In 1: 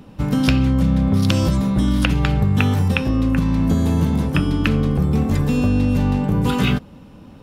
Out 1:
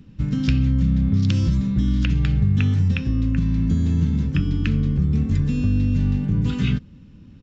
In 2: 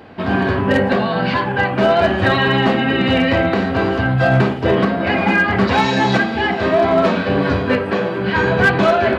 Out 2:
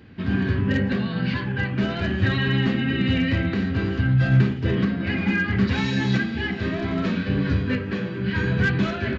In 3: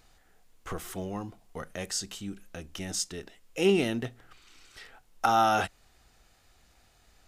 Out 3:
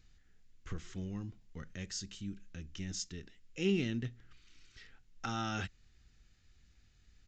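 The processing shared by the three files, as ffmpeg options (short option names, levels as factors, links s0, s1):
-af "firequalizer=gain_entry='entry(110,0);entry(680,-22);entry(1700,-8)':delay=0.05:min_phase=1,aresample=16000,aresample=44100"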